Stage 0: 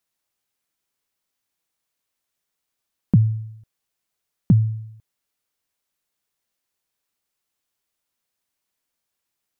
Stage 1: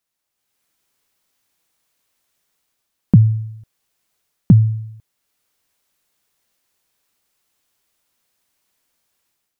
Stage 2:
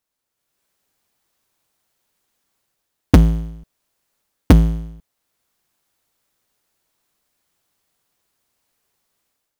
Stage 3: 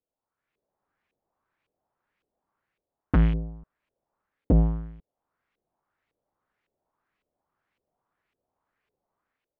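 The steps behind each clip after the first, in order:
automatic gain control gain up to 10 dB
sub-harmonics by changed cycles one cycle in 2, inverted; in parallel at −11 dB: decimation without filtering 14×; on the sum: level −2 dB
dynamic equaliser 2,900 Hz, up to +8 dB, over −43 dBFS, Q 0.98; brickwall limiter −7 dBFS, peak gain reduction 10 dB; auto-filter low-pass saw up 1.8 Hz 440–2,600 Hz; level −6 dB

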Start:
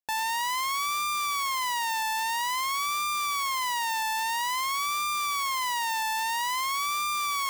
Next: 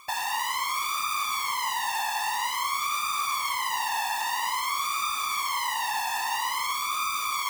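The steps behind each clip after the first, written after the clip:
random phases in short frames
backwards echo 811 ms −21.5 dB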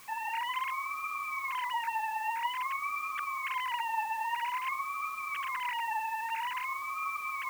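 three sine waves on the formant tracks
bit-depth reduction 8 bits, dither triangular
level −6 dB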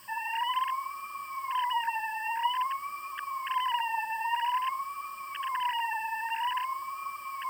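EQ curve with evenly spaced ripples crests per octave 1.3, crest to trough 16 dB
level −2 dB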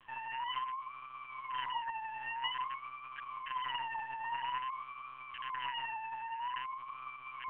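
one-pitch LPC vocoder at 8 kHz 130 Hz
level −8 dB

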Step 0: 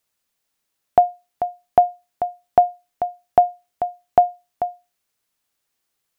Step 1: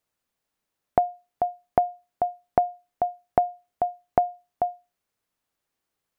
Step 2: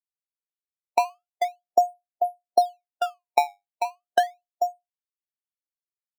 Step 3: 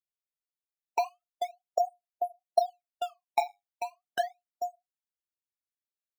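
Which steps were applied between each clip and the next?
high-shelf EQ 2,000 Hz −9 dB; downward compressor, threshold −17 dBFS, peak gain reduction 8 dB
resonant band-pass 500 Hz, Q 0.89; sample-and-hold swept by an LFO 16×, swing 160% 0.35 Hz; every bin expanded away from the loudest bin 1.5 to 1
all-pass phaser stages 12, 3.7 Hz, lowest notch 150–1,900 Hz; level −4.5 dB

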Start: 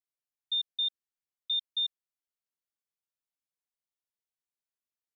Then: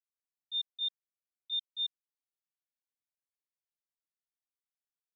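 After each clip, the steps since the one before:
noise gate −28 dBFS, range −16 dB
level +4 dB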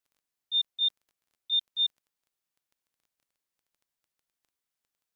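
surface crackle 11 per second −60 dBFS
level +7.5 dB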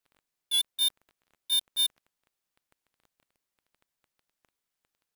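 each half-wave held at its own peak
downward compressor, threshold −24 dBFS, peak gain reduction 3 dB
wow of a warped record 78 rpm, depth 100 cents

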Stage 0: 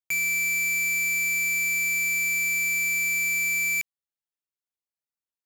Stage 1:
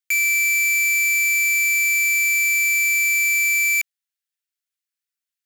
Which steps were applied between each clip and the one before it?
Butterworth high-pass 1,400 Hz 36 dB per octave
level +6.5 dB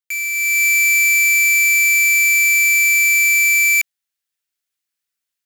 automatic gain control gain up to 10.5 dB
level −4.5 dB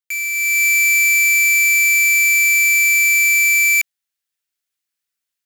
no processing that can be heard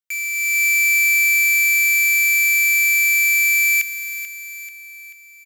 repeating echo 437 ms, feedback 49%, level −11 dB
level −2.5 dB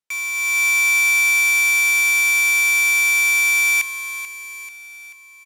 linearly interpolated sample-rate reduction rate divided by 2×

